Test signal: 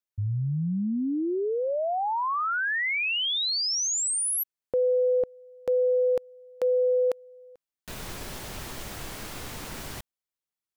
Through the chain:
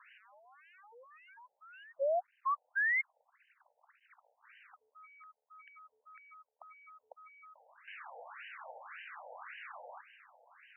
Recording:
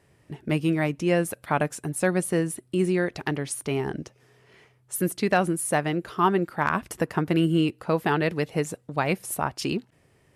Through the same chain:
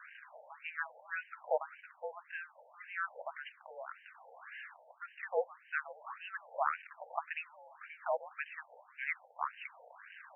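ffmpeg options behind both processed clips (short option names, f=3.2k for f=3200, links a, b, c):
-af "aeval=exprs='val(0)+0.5*0.0188*sgn(val(0))':c=same,highpass=f=490:t=q:w=0.5412,highpass=f=490:t=q:w=1.307,lowpass=f=3.5k:t=q:w=0.5176,lowpass=f=3.5k:t=q:w=0.7071,lowpass=f=3.5k:t=q:w=1.932,afreqshift=-240,afftfilt=real='re*between(b*sr/1024,630*pow(2200/630,0.5+0.5*sin(2*PI*1.8*pts/sr))/1.41,630*pow(2200/630,0.5+0.5*sin(2*PI*1.8*pts/sr))*1.41)':imag='im*between(b*sr/1024,630*pow(2200/630,0.5+0.5*sin(2*PI*1.8*pts/sr))/1.41,630*pow(2200/630,0.5+0.5*sin(2*PI*1.8*pts/sr))*1.41)':win_size=1024:overlap=0.75,volume=-4.5dB"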